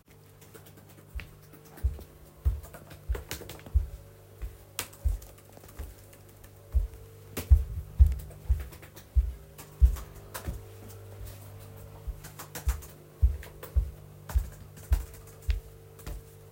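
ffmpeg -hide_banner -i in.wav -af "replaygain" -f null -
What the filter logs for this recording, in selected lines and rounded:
track_gain = +22.0 dB
track_peak = 0.290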